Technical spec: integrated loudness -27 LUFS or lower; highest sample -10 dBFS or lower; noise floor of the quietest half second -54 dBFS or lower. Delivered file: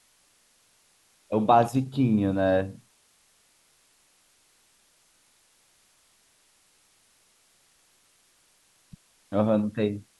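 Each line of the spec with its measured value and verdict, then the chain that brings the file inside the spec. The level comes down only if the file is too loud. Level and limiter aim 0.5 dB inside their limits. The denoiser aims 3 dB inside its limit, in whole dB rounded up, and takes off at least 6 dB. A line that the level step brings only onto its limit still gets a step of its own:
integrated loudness -24.5 LUFS: fail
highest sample -7.0 dBFS: fail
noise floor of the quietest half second -64 dBFS: OK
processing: gain -3 dB; limiter -10.5 dBFS

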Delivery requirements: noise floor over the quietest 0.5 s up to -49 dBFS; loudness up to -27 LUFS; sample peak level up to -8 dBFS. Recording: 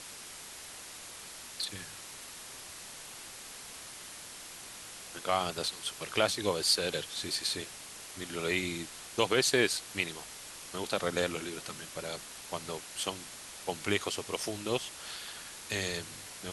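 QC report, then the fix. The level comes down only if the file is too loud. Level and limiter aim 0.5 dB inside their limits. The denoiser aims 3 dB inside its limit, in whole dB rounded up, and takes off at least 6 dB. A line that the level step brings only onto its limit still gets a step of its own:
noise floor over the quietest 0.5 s -47 dBFS: fail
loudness -34.5 LUFS: OK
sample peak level -12.0 dBFS: OK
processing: denoiser 6 dB, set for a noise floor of -47 dBFS

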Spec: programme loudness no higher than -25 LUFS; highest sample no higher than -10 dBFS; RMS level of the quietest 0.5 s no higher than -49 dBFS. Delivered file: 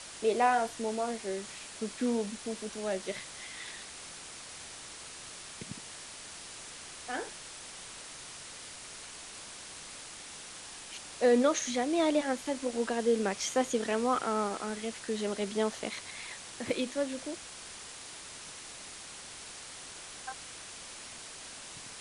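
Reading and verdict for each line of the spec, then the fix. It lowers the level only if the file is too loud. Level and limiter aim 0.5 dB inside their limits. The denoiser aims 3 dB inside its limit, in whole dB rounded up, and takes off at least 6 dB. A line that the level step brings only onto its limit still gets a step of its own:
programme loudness -35.0 LUFS: OK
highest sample -13.0 dBFS: OK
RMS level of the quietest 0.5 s -47 dBFS: fail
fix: denoiser 6 dB, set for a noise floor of -47 dBFS

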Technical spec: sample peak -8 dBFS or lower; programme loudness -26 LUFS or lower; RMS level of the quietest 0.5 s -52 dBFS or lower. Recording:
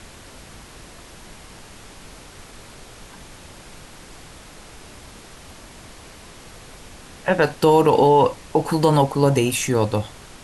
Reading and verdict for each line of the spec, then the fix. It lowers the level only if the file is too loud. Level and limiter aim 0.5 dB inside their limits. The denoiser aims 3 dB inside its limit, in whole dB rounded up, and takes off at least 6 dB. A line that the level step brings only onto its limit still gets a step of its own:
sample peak -5.5 dBFS: fail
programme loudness -18.5 LUFS: fail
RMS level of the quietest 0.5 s -42 dBFS: fail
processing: denoiser 6 dB, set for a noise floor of -42 dBFS; gain -8 dB

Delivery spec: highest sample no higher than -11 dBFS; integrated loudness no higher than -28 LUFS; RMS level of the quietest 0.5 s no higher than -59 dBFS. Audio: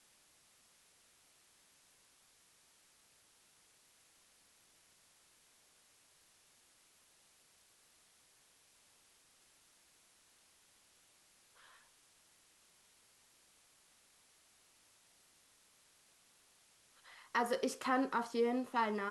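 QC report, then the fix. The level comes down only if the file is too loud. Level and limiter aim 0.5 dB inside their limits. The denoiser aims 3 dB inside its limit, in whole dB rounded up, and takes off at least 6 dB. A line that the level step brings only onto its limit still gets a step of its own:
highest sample -21.0 dBFS: OK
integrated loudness -36.0 LUFS: OK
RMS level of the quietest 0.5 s -69 dBFS: OK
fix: none

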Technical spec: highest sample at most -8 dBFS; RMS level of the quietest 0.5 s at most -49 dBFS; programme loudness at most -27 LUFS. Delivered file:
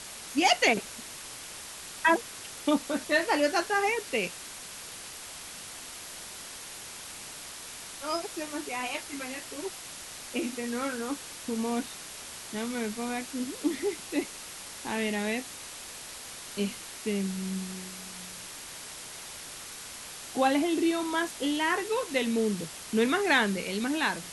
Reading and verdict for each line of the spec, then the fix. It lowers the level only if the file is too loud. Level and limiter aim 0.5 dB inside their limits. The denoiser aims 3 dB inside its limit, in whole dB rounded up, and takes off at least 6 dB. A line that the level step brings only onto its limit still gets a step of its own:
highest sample -9.5 dBFS: OK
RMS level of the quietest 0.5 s -43 dBFS: fail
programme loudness -31.0 LUFS: OK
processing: denoiser 9 dB, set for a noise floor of -43 dBFS

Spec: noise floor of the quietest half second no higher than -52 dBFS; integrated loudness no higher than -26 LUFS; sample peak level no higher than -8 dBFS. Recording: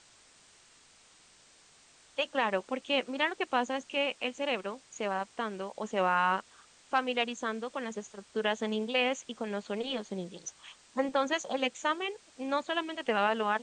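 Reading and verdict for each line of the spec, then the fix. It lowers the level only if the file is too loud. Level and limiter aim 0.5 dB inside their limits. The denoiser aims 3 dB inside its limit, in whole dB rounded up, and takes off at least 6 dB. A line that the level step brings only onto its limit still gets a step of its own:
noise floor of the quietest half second -61 dBFS: OK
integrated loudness -32.5 LUFS: OK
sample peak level -14.0 dBFS: OK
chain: none

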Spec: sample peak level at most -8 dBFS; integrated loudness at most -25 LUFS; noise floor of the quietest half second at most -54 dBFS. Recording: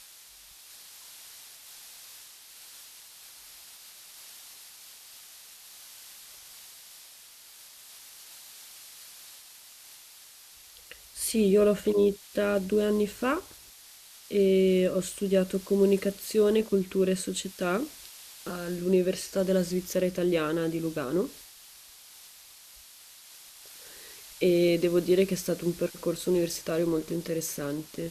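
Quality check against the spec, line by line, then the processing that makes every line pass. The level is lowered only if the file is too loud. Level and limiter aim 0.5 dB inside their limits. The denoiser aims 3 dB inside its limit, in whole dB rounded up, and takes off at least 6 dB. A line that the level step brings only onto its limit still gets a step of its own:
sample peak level -12.5 dBFS: OK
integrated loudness -27.0 LUFS: OK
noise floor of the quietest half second -52 dBFS: fail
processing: denoiser 6 dB, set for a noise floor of -52 dBFS

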